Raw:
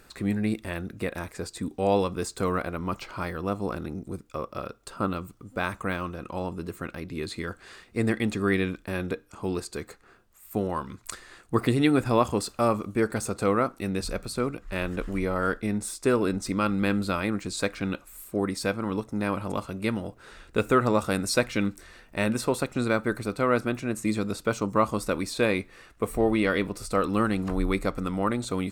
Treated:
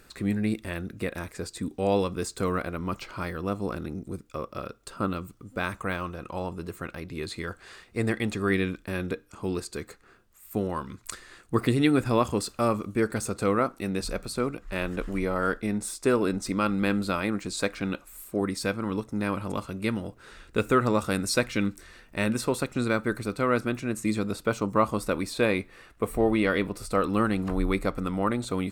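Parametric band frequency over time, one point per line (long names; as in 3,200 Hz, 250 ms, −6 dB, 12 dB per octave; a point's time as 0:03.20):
parametric band −3.5 dB 0.9 octaves
820 Hz
from 0:05.78 250 Hz
from 0:08.50 770 Hz
from 0:13.59 92 Hz
from 0:18.41 710 Hz
from 0:24.19 6,300 Hz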